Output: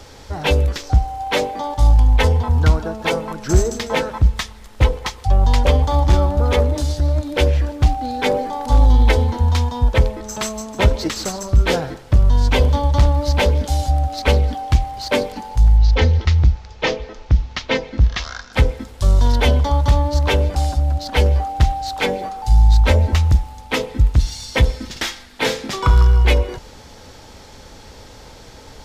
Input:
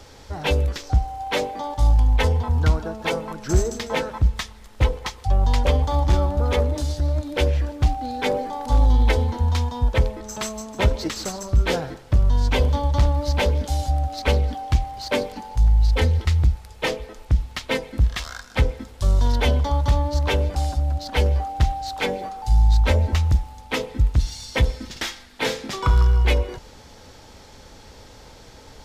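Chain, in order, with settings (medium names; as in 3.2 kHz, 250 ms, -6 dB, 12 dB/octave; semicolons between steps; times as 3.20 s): 15.77–18.53 s: steep low-pass 6.5 kHz 48 dB/octave; trim +4.5 dB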